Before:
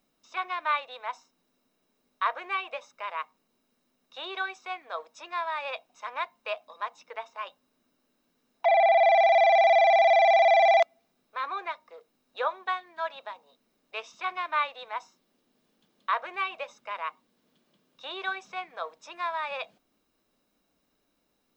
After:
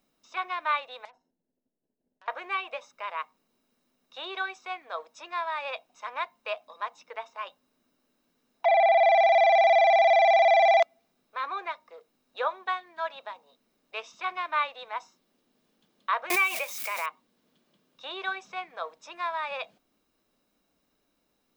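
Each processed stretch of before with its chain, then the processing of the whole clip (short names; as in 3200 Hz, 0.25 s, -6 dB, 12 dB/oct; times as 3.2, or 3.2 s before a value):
1.05–2.28 compressor 4:1, threshold -35 dBFS + running mean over 37 samples + core saturation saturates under 3500 Hz
16.3–17.06 switching spikes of -33.5 dBFS + bell 2300 Hz +10.5 dB 0.25 oct + backwards sustainer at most 40 dB/s
whole clip: dry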